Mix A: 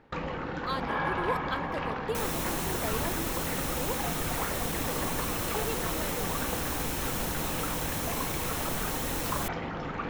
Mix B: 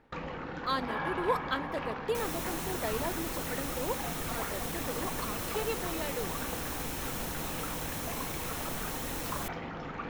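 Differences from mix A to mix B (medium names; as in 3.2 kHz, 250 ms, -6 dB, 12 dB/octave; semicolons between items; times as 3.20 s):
first sound -6.0 dB; second sound -5.0 dB; reverb: on, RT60 1.0 s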